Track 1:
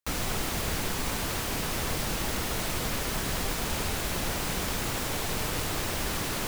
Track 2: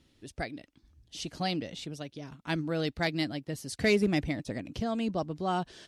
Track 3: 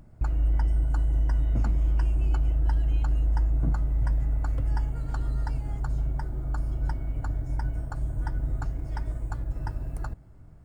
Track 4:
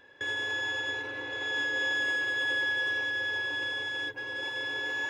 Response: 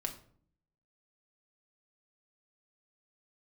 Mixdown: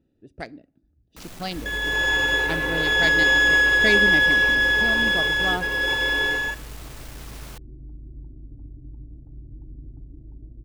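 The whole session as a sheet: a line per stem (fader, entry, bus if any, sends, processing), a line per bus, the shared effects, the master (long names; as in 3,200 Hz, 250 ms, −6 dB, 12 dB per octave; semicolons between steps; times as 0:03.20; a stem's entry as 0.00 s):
−9.0 dB, 1.10 s, send −5.5 dB, soft clipping −34 dBFS, distortion −8 dB
+2.5 dB, 0.00 s, send −15 dB, adaptive Wiener filter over 41 samples; low-shelf EQ 210 Hz −8.5 dB
−1.0 dB, 1.35 s, no send, downward compressor 2 to 1, threshold −26 dBFS, peak gain reduction 4 dB; transistor ladder low-pass 370 Hz, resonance 50%
0.0 dB, 1.45 s, send −6 dB, automatic gain control gain up to 9 dB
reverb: on, RT60 0.55 s, pre-delay 5 ms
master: no processing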